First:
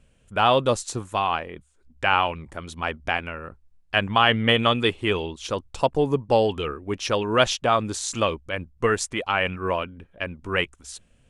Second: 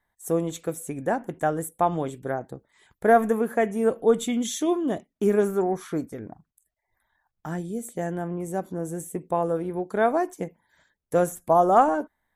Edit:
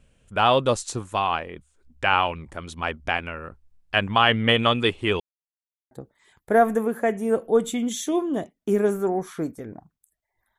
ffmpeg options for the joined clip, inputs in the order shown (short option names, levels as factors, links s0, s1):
-filter_complex "[0:a]apad=whole_dur=10.58,atrim=end=10.58,asplit=2[s0][s1];[s0]atrim=end=5.2,asetpts=PTS-STARTPTS,afade=t=out:st=5.196:d=0.004:c=hsin[s2];[s1]atrim=start=5.2:end=5.91,asetpts=PTS-STARTPTS,volume=0[s3];[1:a]atrim=start=2.45:end=7.12,asetpts=PTS-STARTPTS,afade=t=in:d=0.004:c=hsin[s4];[s2][s3][s4]concat=n=3:v=0:a=1"